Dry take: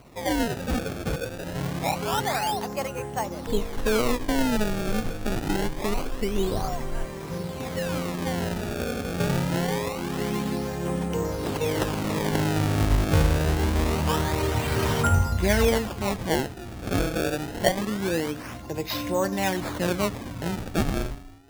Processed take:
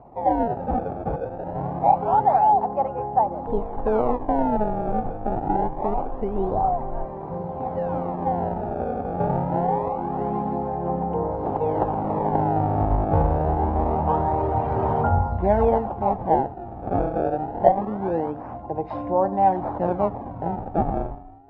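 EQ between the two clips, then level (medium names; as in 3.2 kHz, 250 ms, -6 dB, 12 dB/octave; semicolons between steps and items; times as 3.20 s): resonant low-pass 800 Hz, resonance Q 5.2; -1.0 dB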